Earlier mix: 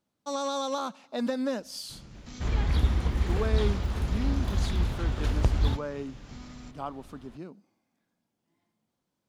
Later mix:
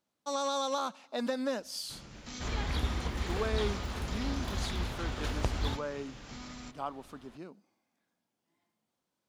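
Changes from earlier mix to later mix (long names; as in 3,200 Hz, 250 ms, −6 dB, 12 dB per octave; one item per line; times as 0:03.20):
first sound +4.5 dB
master: add low-shelf EQ 280 Hz −9.5 dB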